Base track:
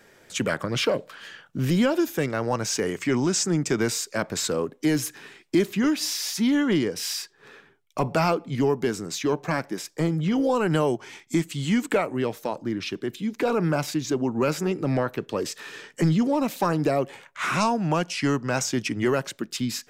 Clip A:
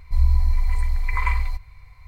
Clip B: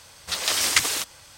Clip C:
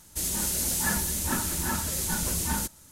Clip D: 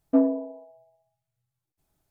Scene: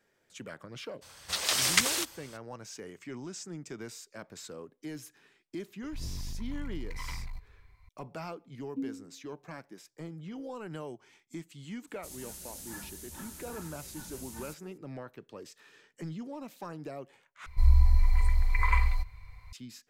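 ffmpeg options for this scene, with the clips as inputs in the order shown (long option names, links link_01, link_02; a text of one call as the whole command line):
ffmpeg -i bed.wav -i cue0.wav -i cue1.wav -i cue2.wav -i cue3.wav -filter_complex "[1:a]asplit=2[link_01][link_02];[0:a]volume=-18.5dB[link_03];[link_01]asoftclip=type=hard:threshold=-22.5dB[link_04];[4:a]asuperstop=centerf=1000:order=12:qfactor=0.5[link_05];[link_03]asplit=2[link_06][link_07];[link_06]atrim=end=17.464[link_08];[link_02]atrim=end=2.07,asetpts=PTS-STARTPTS,volume=-3dB[link_09];[link_07]atrim=start=19.526[link_10];[2:a]atrim=end=1.37,asetpts=PTS-STARTPTS,volume=-4.5dB,afade=type=in:duration=0.02,afade=type=out:start_time=1.35:duration=0.02,adelay=1010[link_11];[link_04]atrim=end=2.07,asetpts=PTS-STARTPTS,volume=-12.5dB,afade=type=in:duration=0.004:curve=hsin,afade=type=out:start_time=2.066:duration=0.004:curve=hsin,adelay=5820[link_12];[link_05]atrim=end=2.1,asetpts=PTS-STARTPTS,volume=-15dB,afade=type=in:duration=0.004:curve=hsin,afade=type=out:start_time=2.096:duration=0.004:curve=hsin,adelay=8630[link_13];[3:a]atrim=end=2.91,asetpts=PTS-STARTPTS,volume=-17.5dB,afade=type=in:duration=0.004:curve=hsin,afade=type=out:start_time=2.906:duration=0.004:curve=hsin,adelay=11870[link_14];[link_08][link_09]acrossfade=duration=0.004:curve1=hsin:curve2=hsin[link_15];[link_15][link_10]acrossfade=duration=0.004:curve1=hsin:curve2=hsin[link_16];[link_16][link_11][link_12][link_13][link_14]amix=inputs=5:normalize=0" out.wav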